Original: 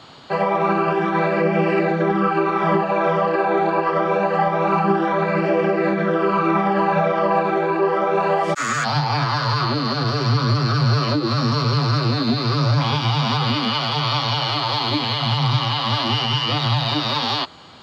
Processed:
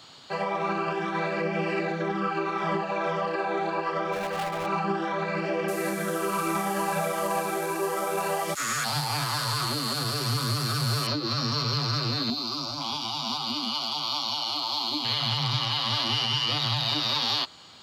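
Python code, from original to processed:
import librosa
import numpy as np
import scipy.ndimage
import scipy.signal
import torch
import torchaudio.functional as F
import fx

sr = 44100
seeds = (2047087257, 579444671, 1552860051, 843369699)

y = fx.overload_stage(x, sr, gain_db=17.0, at=(4.12, 4.65), fade=0.02)
y = fx.delta_mod(y, sr, bps=64000, step_db=-32.5, at=(5.68, 11.07))
y = fx.fixed_phaser(y, sr, hz=480.0, stages=6, at=(12.3, 15.05))
y = librosa.effects.preemphasis(y, coef=0.8, zi=[0.0])
y = y * 10.0 ** (3.5 / 20.0)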